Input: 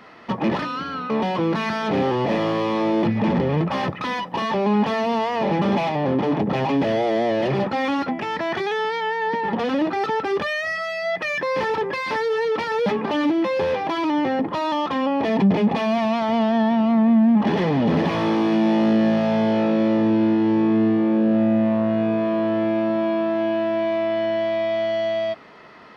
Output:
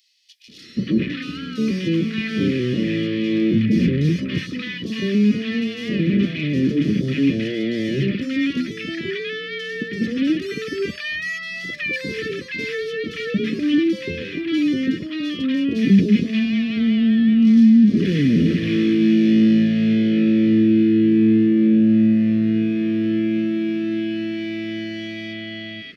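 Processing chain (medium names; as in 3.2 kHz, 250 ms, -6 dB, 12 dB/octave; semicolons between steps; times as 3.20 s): Chebyshev band-stop 310–2300 Hz, order 2; three bands offset in time highs, lows, mids 480/580 ms, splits 860/4200 Hz; trim +4.5 dB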